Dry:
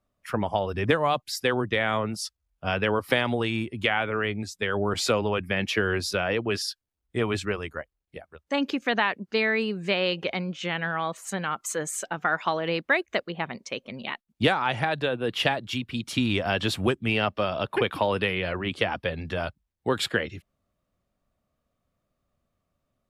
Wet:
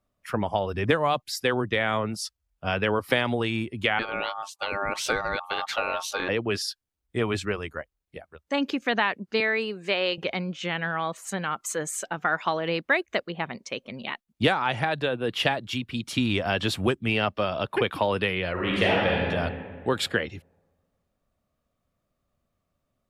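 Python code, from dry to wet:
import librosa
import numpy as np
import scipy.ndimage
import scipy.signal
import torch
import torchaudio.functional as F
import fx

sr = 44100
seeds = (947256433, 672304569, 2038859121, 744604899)

y = fx.ring_mod(x, sr, carrier_hz=1000.0, at=(3.99, 6.29))
y = fx.highpass(y, sr, hz=290.0, slope=12, at=(9.4, 10.18))
y = fx.reverb_throw(y, sr, start_s=18.52, length_s=0.74, rt60_s=1.9, drr_db=-4.5)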